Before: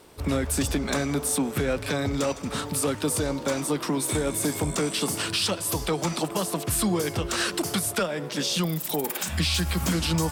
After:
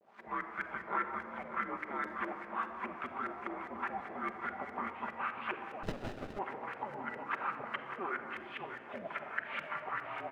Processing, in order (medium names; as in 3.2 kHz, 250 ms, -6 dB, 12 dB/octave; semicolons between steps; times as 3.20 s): mistuned SSB -210 Hz 340–2700 Hz; in parallel at +0.5 dB: volume shaper 147 bpm, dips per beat 2, -17 dB, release 135 ms; on the sum: bit crusher 8-bit; LFO low-pass saw up 4.9 Hz 440–1800 Hz; differentiator; on a send: delay 591 ms -9.5 dB; on the sum: simulated room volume 3800 m³, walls mixed, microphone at 1.2 m; 5.83–6.39 s: sliding maximum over 33 samples; trim +3 dB